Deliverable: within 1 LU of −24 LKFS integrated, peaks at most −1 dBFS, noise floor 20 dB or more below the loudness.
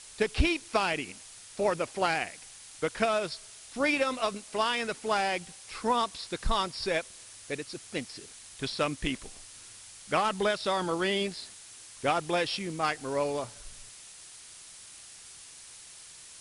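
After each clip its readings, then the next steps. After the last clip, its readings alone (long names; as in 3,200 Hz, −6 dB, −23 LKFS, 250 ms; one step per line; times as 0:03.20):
background noise floor −50 dBFS; target noise floor −51 dBFS; integrated loudness −30.5 LKFS; sample peak −12.5 dBFS; target loudness −24.0 LKFS
→ broadband denoise 6 dB, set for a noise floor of −50 dBFS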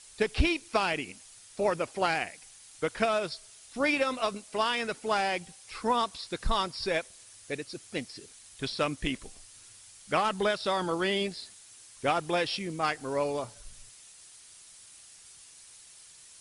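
background noise floor −53 dBFS; integrated loudness −30.5 LKFS; sample peak −12.5 dBFS; target loudness −24.0 LKFS
→ level +6.5 dB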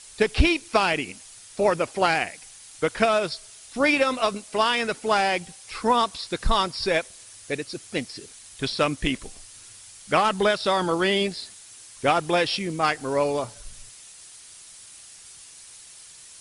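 integrated loudness −24.0 LKFS; sample peak −6.0 dBFS; background noise floor −47 dBFS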